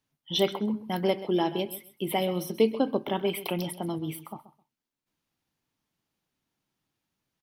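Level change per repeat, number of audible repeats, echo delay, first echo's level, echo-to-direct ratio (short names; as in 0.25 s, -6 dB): -14.5 dB, 2, 0.131 s, -15.0 dB, -15.0 dB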